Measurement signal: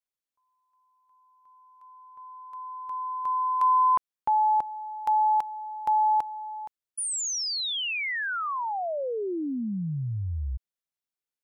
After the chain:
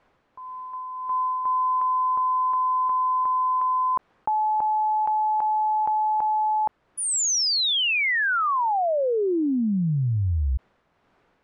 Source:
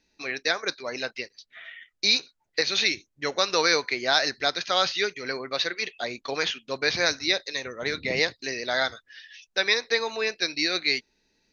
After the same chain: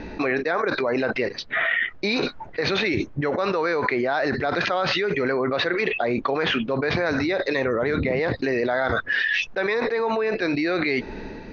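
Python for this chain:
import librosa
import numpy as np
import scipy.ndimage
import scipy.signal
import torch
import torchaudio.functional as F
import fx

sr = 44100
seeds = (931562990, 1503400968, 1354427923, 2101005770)

y = scipy.signal.sosfilt(scipy.signal.butter(2, 1300.0, 'lowpass', fs=sr, output='sos'), x)
y = y * (1.0 - 0.42 / 2.0 + 0.42 / 2.0 * np.cos(2.0 * np.pi * 1.7 * (np.arange(len(y)) / sr)))
y = fx.env_flatten(y, sr, amount_pct=100)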